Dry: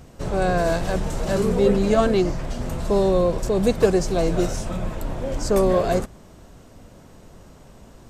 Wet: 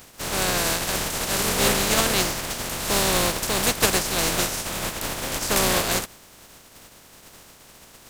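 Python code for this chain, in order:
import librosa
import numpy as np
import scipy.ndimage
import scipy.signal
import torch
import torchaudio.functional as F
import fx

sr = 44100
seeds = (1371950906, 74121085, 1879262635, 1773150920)

y = fx.spec_flatten(x, sr, power=0.32)
y = F.gain(torch.from_numpy(y), -3.0).numpy()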